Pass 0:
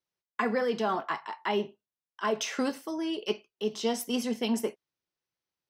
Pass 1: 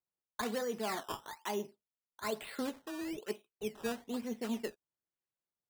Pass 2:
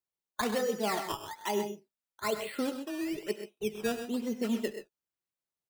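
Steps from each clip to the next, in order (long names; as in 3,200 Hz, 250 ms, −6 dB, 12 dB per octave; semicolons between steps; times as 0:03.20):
low-pass filter 2,700 Hz 12 dB per octave; sample-and-hold swept by an LFO 14×, swing 100% 1.1 Hz; level −8 dB
noise reduction from a noise print of the clip's start 7 dB; on a send: multi-tap delay 71/100/129/140 ms −20/−14/−10.5/−18.5 dB; on the sum: level +5.5 dB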